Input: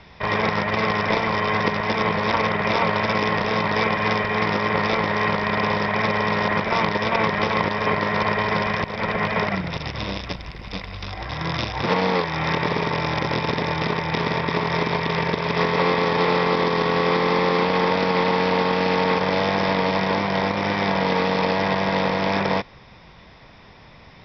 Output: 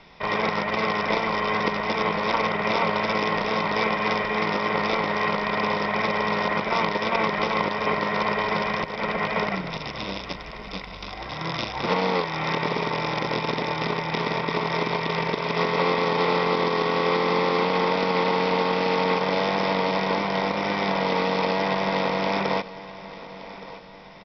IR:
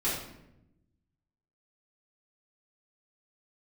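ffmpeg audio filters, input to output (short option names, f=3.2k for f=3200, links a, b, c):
-af "equalizer=f=85:w=1.6:g=-15,bandreject=f=1.7k:w=8.6,aecho=1:1:1170|2340|3510|4680:0.15|0.0658|0.029|0.0127,volume=-2dB"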